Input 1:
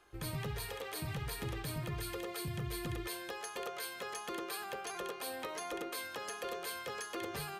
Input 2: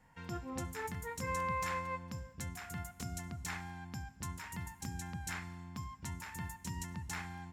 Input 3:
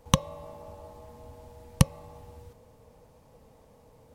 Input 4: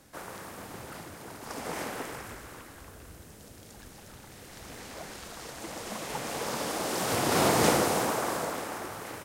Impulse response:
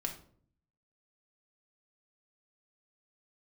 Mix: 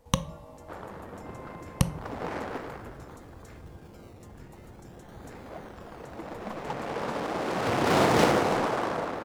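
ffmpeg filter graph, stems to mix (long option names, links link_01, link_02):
-filter_complex "[0:a]alimiter=level_in=10.5dB:limit=-24dB:level=0:latency=1,volume=-10.5dB,acrusher=samples=22:mix=1:aa=0.000001:lfo=1:lforange=13.2:lforate=0.49,adelay=1800,volume=-16dB,asplit=2[link_01][link_02];[link_02]volume=-4.5dB[link_03];[1:a]volume=-14.5dB[link_04];[2:a]volume=-6.5dB,asplit=2[link_05][link_06];[link_06]volume=-7dB[link_07];[3:a]adynamicsmooth=sensitivity=5:basefreq=730,adelay=550,volume=2.5dB[link_08];[4:a]atrim=start_sample=2205[link_09];[link_03][link_07]amix=inputs=2:normalize=0[link_10];[link_10][link_09]afir=irnorm=-1:irlink=0[link_11];[link_01][link_04][link_05][link_08][link_11]amix=inputs=5:normalize=0"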